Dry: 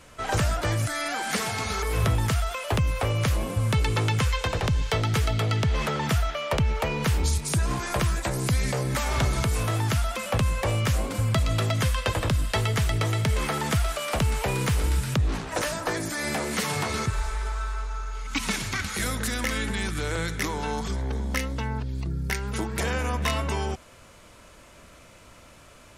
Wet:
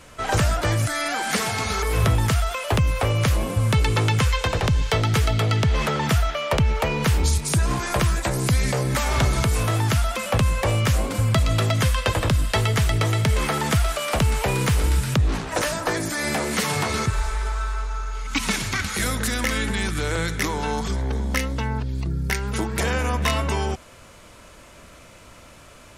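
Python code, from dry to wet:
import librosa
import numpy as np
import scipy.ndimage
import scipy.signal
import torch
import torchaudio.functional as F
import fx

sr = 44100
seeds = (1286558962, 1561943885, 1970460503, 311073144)

y = F.gain(torch.from_numpy(x), 4.0).numpy()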